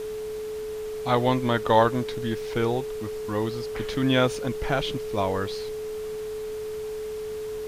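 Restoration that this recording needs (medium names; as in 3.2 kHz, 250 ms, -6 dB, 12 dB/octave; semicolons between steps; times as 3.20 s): band-stop 430 Hz, Q 30; noise print and reduce 30 dB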